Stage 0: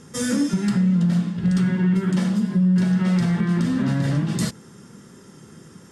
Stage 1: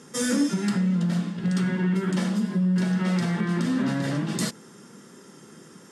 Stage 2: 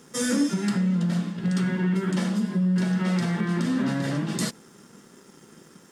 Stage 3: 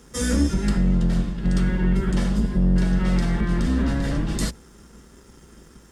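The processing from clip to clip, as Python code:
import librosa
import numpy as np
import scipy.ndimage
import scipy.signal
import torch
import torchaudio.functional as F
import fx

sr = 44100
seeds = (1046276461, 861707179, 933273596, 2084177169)

y1 = scipy.signal.sosfilt(scipy.signal.butter(2, 220.0, 'highpass', fs=sr, output='sos'), x)
y2 = np.sign(y1) * np.maximum(np.abs(y1) - 10.0 ** (-56.0 / 20.0), 0.0)
y3 = fx.octave_divider(y2, sr, octaves=2, level_db=3.0)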